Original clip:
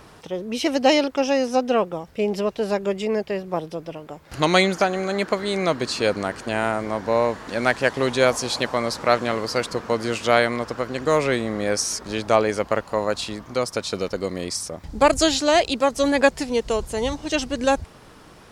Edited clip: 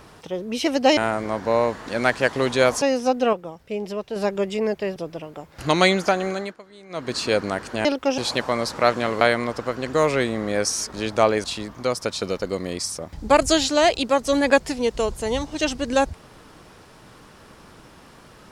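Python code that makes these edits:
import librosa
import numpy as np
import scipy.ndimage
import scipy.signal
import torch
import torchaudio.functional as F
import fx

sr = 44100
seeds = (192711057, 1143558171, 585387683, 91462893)

y = fx.edit(x, sr, fx.swap(start_s=0.97, length_s=0.33, other_s=6.58, other_length_s=1.85),
    fx.clip_gain(start_s=1.81, length_s=0.83, db=-5.5),
    fx.cut(start_s=3.44, length_s=0.25),
    fx.fade_down_up(start_s=5.02, length_s=0.87, db=-21.5, fade_s=0.27),
    fx.cut(start_s=9.46, length_s=0.87),
    fx.cut(start_s=12.56, length_s=0.59), tone=tone)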